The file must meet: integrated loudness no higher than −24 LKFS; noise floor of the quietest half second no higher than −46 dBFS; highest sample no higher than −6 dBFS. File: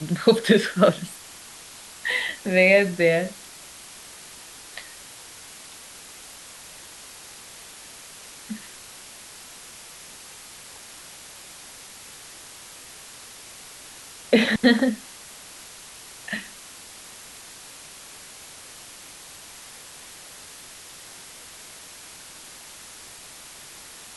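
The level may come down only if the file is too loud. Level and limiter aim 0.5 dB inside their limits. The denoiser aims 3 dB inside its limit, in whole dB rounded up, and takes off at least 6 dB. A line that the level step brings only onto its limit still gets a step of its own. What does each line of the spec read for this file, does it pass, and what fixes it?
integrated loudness −21.5 LKFS: out of spec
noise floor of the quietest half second −44 dBFS: out of spec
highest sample −5.0 dBFS: out of spec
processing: level −3 dB

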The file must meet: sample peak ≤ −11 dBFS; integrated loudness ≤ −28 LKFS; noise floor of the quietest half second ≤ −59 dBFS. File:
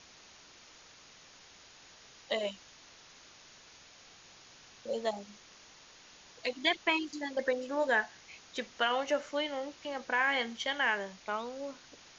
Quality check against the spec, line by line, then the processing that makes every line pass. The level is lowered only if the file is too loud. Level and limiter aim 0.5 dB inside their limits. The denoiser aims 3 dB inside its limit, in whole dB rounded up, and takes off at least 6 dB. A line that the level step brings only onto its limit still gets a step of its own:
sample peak −16.5 dBFS: in spec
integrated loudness −33.5 LKFS: in spec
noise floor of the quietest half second −57 dBFS: out of spec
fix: broadband denoise 6 dB, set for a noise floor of −57 dBFS

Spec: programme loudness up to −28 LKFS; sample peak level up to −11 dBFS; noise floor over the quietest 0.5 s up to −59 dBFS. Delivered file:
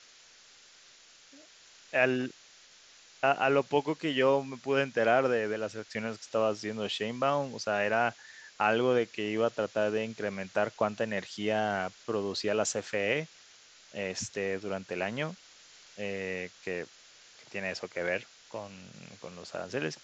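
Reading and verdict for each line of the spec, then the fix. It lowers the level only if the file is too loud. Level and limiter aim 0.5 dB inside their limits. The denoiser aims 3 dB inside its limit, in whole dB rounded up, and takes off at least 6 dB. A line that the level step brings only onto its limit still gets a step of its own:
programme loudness −31.0 LKFS: in spec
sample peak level −12.0 dBFS: in spec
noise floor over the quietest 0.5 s −57 dBFS: out of spec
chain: broadband denoise 6 dB, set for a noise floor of −57 dBFS

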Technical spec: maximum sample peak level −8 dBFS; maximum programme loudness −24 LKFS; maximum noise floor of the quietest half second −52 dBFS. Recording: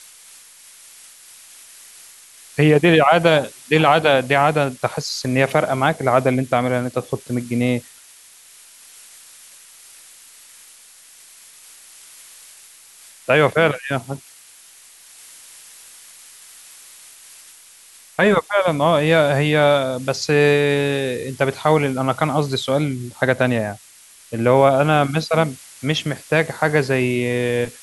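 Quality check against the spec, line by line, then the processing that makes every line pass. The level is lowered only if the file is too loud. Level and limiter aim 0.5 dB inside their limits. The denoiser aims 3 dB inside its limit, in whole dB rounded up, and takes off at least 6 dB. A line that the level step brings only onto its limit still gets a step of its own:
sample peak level −2.0 dBFS: out of spec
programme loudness −18.0 LKFS: out of spec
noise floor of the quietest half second −47 dBFS: out of spec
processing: level −6.5 dB

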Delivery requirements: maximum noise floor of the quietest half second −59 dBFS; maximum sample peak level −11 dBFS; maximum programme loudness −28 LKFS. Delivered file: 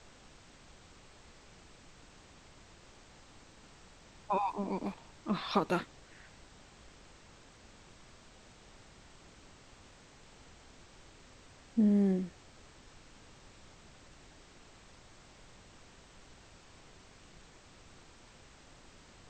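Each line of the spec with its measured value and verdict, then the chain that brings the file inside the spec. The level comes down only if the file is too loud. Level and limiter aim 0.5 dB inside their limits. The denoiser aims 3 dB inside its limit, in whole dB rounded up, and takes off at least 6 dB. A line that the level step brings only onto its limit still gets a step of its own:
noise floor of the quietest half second −57 dBFS: out of spec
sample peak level −13.5 dBFS: in spec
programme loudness −33.0 LKFS: in spec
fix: broadband denoise 6 dB, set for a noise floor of −57 dBFS

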